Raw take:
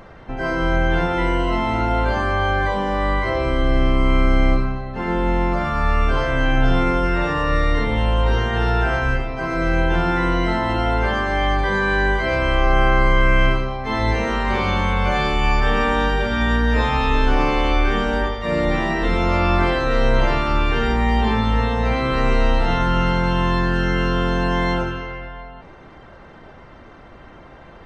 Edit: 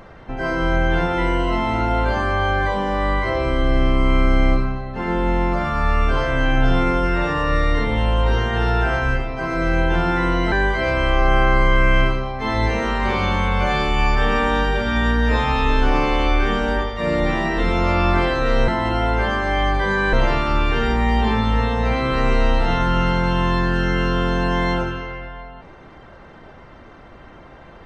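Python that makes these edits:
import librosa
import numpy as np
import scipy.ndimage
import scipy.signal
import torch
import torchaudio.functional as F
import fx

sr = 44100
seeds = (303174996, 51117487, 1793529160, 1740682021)

y = fx.edit(x, sr, fx.move(start_s=10.52, length_s=1.45, to_s=20.13), tone=tone)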